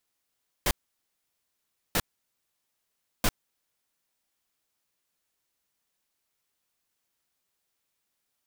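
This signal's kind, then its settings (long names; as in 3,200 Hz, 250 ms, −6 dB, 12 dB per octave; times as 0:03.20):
noise bursts pink, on 0.05 s, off 1.24 s, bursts 3, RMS −23.5 dBFS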